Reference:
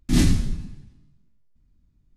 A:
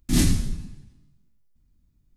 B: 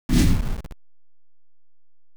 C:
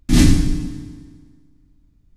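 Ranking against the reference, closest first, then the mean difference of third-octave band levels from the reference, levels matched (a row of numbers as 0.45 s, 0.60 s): A, C, B; 1.5 dB, 4.0 dB, 5.5 dB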